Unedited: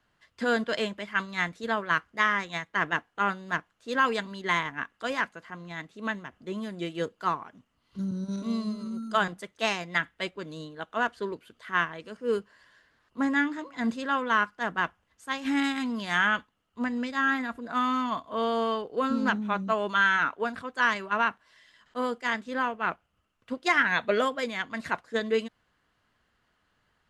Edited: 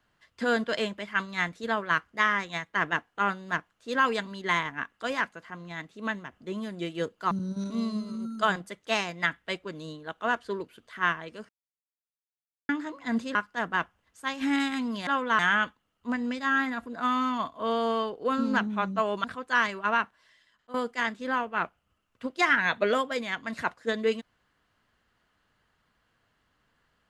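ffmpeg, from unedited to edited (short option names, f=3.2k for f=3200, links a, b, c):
-filter_complex "[0:a]asplit=9[a][b][c][d][e][f][g][h][i];[a]atrim=end=7.312[j];[b]atrim=start=8.028:end=12.21,asetpts=PTS-STARTPTS,afade=t=out:st=4.178:d=0.004:c=hsin[k];[c]atrim=start=12.21:end=13.41,asetpts=PTS-STARTPTS,volume=0[l];[d]atrim=start=13.41:end=14.072,asetpts=PTS-STARTPTS,afade=t=in:d=0.004:c=hsin[m];[e]atrim=start=14.388:end=16.112[n];[f]atrim=start=14.068:end=14.392[o];[g]atrim=start=16.108:end=19.962[p];[h]atrim=start=20.508:end=22.01,asetpts=PTS-STARTPTS,afade=t=out:st=0.772:d=0.73:silence=0.16788[q];[i]atrim=start=22.01,asetpts=PTS-STARTPTS,afade=t=in:d=0.004:c=hsin:silence=0.16788[r];[k][l][m]concat=n=3:v=0:a=1[s];[j][s]acrossfade=d=0.004:c1=hsin:c2=hsin[t];[t][n]acrossfade=d=0.004:c1=hsin:c2=hsin[u];[u][o]acrossfade=d=0.004:c1=hsin:c2=hsin[v];[v][p]acrossfade=d=0.004:c1=hsin:c2=hsin[w];[q][r]concat=n=2:v=0:a=1[x];[w][x]acrossfade=d=0.004:c1=hsin:c2=hsin"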